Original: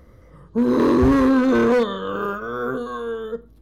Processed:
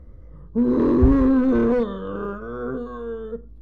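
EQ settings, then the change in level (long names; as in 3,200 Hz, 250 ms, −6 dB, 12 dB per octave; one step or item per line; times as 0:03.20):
spectral tilt −3.5 dB per octave
parametric band 120 Hz −4 dB
−7.0 dB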